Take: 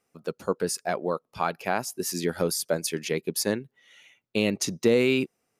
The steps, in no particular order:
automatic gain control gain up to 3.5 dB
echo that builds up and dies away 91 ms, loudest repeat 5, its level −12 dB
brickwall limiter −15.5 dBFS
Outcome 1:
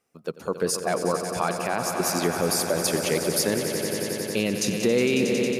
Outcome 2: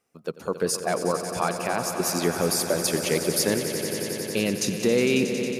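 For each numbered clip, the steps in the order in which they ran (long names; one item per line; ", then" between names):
echo that builds up and dies away, then brickwall limiter, then automatic gain control
brickwall limiter, then echo that builds up and dies away, then automatic gain control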